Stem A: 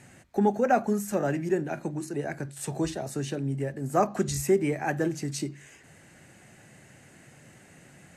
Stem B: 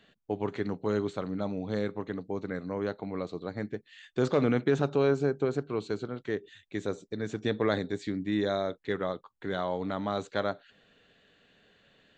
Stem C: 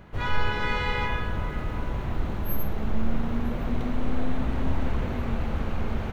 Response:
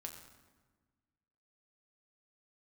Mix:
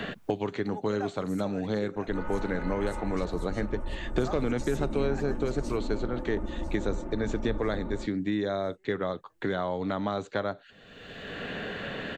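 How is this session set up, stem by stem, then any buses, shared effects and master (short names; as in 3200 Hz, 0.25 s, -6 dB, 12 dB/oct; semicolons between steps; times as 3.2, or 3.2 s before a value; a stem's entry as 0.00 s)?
-13.5 dB, 0.30 s, no send, echo send -13 dB, weighting filter A; gate -47 dBFS, range -11 dB
0.0 dB, 0.00 s, no send, no echo send, three-band squash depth 100%
-7.0 dB, 1.95 s, no send, no echo send, minimum comb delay 5.6 ms; LPF 1000 Hz 12 dB/oct; comb 3.4 ms, depth 91%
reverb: off
echo: feedback echo 0.998 s, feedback 46%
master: dry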